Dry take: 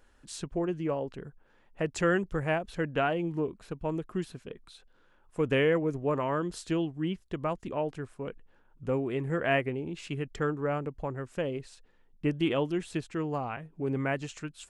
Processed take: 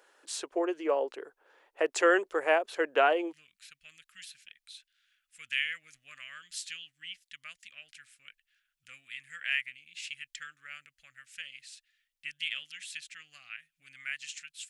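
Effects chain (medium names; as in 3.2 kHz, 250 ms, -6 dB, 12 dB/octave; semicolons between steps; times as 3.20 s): inverse Chebyshev high-pass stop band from 190 Hz, stop band 40 dB, from 3.31 s stop band from 1 kHz; trim +4.5 dB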